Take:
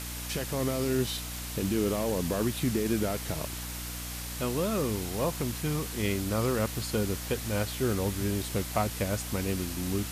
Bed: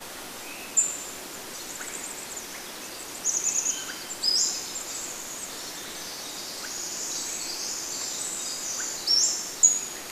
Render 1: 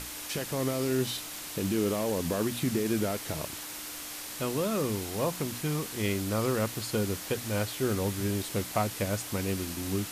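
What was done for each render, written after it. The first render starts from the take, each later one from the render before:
mains-hum notches 60/120/180/240 Hz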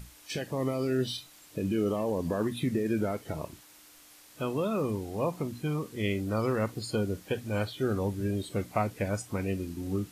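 noise reduction from a noise print 15 dB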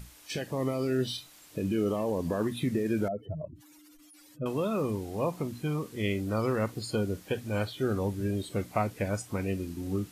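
0:03.08–0:04.46: expanding power law on the bin magnitudes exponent 3.1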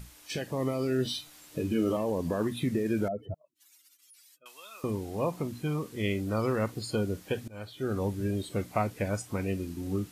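0:01.04–0:01.97: double-tracking delay 13 ms −4 dB
0:03.34–0:04.84: Bessel high-pass filter 2,800 Hz
0:07.48–0:08.03: fade in, from −23 dB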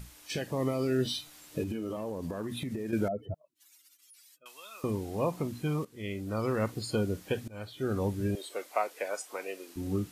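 0:01.63–0:02.93: downward compressor 10 to 1, threshold −31 dBFS
0:05.85–0:06.69: fade in, from −13.5 dB
0:08.35–0:09.76: high-pass filter 440 Hz 24 dB per octave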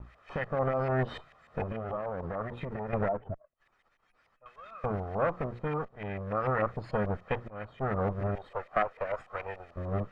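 lower of the sound and its delayed copy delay 1.6 ms
auto-filter low-pass saw up 6.8 Hz 930–2,100 Hz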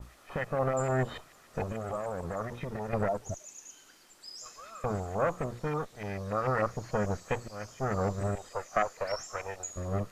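mix in bed −22.5 dB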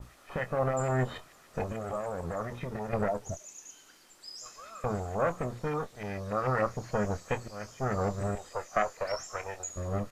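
double-tracking delay 24 ms −12 dB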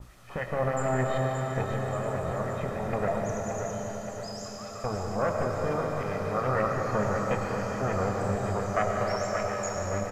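on a send: repeating echo 575 ms, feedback 51%, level −8 dB
on the sum: comb and all-pass reverb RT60 4.8 s, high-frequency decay 0.8×, pre-delay 60 ms, DRR 0 dB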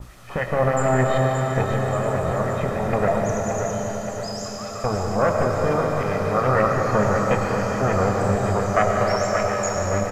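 level +8 dB

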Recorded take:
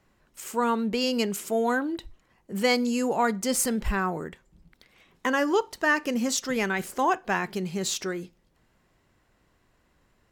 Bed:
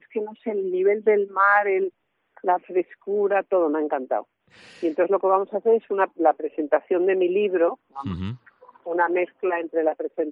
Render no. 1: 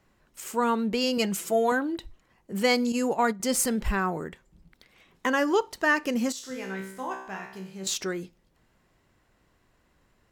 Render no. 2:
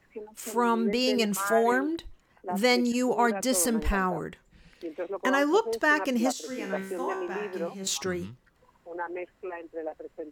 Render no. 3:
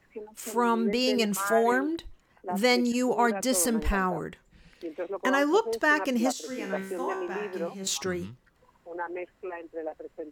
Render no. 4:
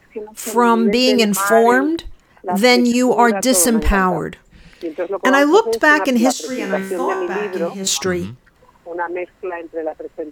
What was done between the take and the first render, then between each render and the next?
0:01.17–0:01.72: comb filter 6 ms; 0:02.92–0:03.40: noise gate −28 dBFS, range −9 dB; 0:06.32–0:07.87: tuned comb filter 64 Hz, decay 0.71 s, mix 90%
mix in bed −13.5 dB
no processing that can be heard
level +11.5 dB; brickwall limiter −1 dBFS, peak gain reduction 1 dB

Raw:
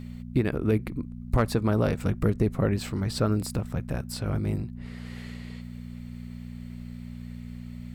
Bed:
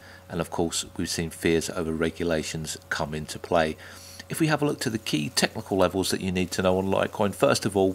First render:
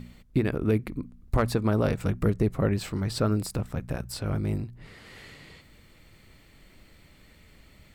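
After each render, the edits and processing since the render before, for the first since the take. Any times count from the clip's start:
hum removal 60 Hz, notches 4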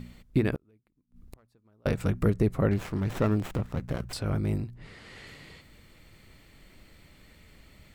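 0:00.55–0:01.86: gate with flip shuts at −27 dBFS, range −39 dB
0:02.71–0:04.13: windowed peak hold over 9 samples
0:04.74–0:05.27: low-pass filter 9,600 Hz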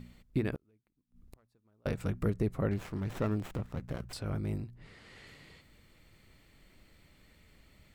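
level −6.5 dB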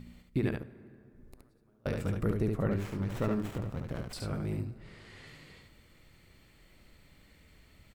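single-tap delay 71 ms −4 dB
dense smooth reverb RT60 2.8 s, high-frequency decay 0.5×, DRR 16 dB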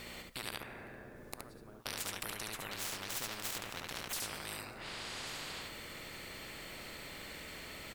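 every bin compressed towards the loudest bin 10 to 1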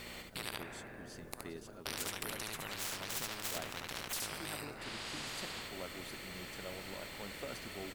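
mix in bed −25 dB

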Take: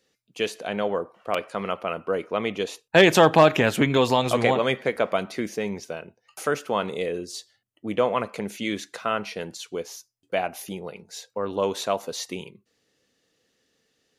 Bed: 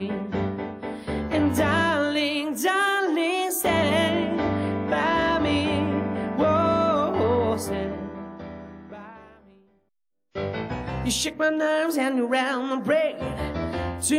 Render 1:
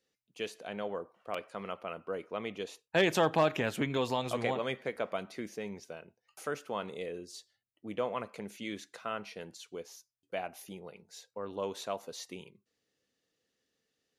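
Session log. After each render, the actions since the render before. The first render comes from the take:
level −11.5 dB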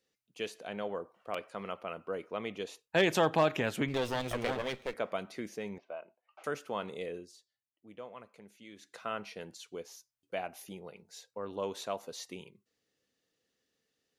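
0:03.88–0:04.94: lower of the sound and its delayed copy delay 0.33 ms
0:05.78–0:06.44: loudspeaker in its box 380–2,700 Hz, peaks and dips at 450 Hz −8 dB, 640 Hz +10 dB, 1,100 Hz +5 dB, 1,800 Hz −7 dB
0:07.14–0:08.99: duck −12.5 dB, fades 0.23 s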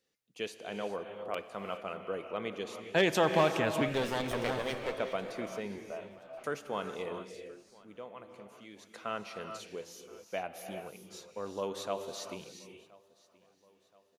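repeating echo 1,025 ms, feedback 48%, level −24 dB
reverb whose tail is shaped and stops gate 440 ms rising, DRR 6.5 dB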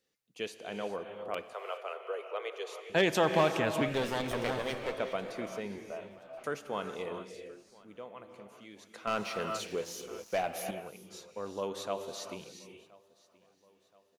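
0:01.53–0:02.90: Butterworth high-pass 380 Hz 72 dB per octave
0:09.07–0:10.71: leveller curve on the samples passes 2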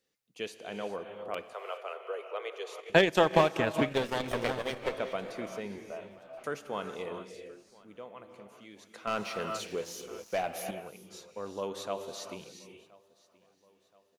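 0:02.78–0:04.89: transient designer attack +8 dB, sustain −9 dB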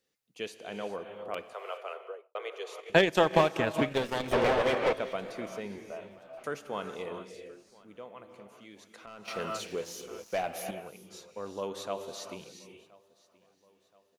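0:01.94–0:02.35: fade out and dull
0:04.32–0:04.93: mid-hump overdrive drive 27 dB, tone 1,100 Hz, clips at −15 dBFS
0:08.87–0:09.28: downward compressor 5 to 1, threshold −46 dBFS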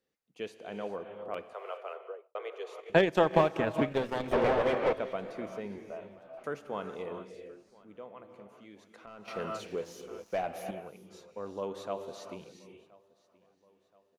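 high-shelf EQ 2,500 Hz −10.5 dB
mains-hum notches 60/120 Hz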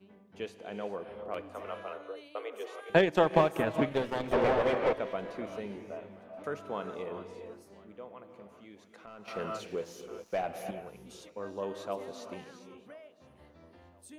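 mix in bed −29 dB

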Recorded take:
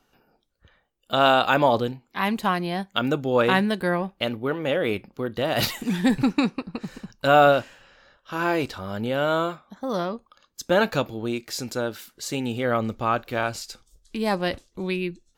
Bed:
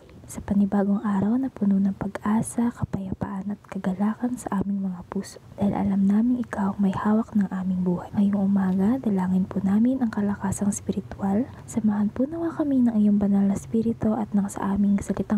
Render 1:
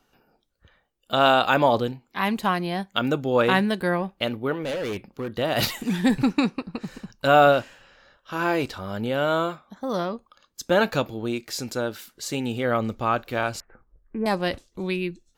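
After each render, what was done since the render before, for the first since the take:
0:04.63–0:05.30: hard clipping −25.5 dBFS
0:13.60–0:14.26: Butterworth low-pass 1,900 Hz 48 dB per octave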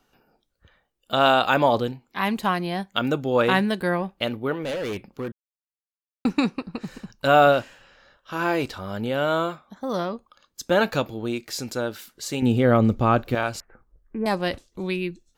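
0:05.32–0:06.25: silence
0:12.42–0:13.35: low-shelf EQ 490 Hz +11 dB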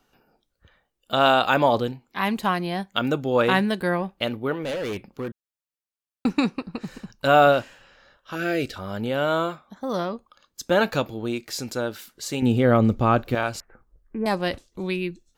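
0:08.35–0:08.76: Butterworth band-reject 970 Hz, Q 1.4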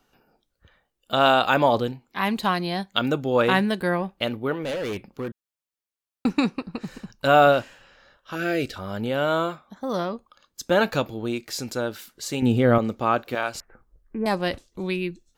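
0:02.36–0:03.06: parametric band 4,100 Hz +7.5 dB 0.46 octaves
0:12.78–0:13.55: high-pass filter 460 Hz 6 dB per octave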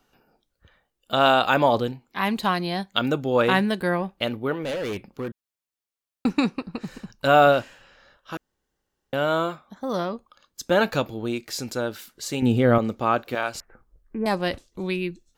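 0:08.37–0:09.13: fill with room tone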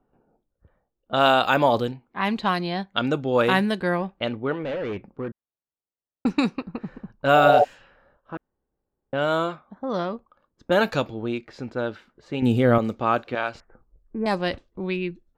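0:07.39–0:07.61: healed spectral selection 380–900 Hz before
low-pass that shuts in the quiet parts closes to 760 Hz, open at −17 dBFS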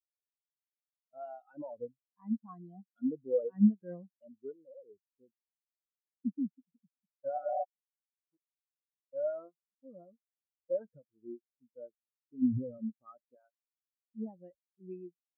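brickwall limiter −15 dBFS, peak gain reduction 11 dB
every bin expanded away from the loudest bin 4 to 1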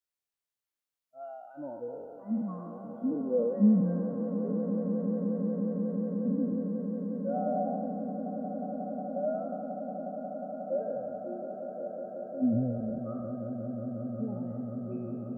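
peak hold with a decay on every bin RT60 1.44 s
echo that builds up and dies away 180 ms, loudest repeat 8, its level −12 dB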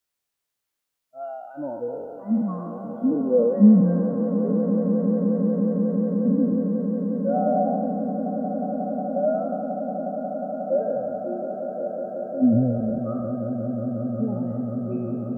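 level +9 dB

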